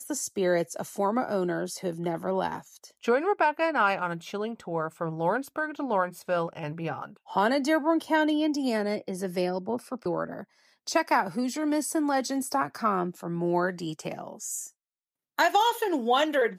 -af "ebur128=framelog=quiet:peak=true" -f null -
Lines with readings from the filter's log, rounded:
Integrated loudness:
  I:         -28.0 LUFS
  Threshold: -38.2 LUFS
Loudness range:
  LRA:         2.4 LU
  Threshold: -48.5 LUFS
  LRA low:   -29.8 LUFS
  LRA high:  -27.4 LUFS
True peak:
  Peak:      -11.2 dBFS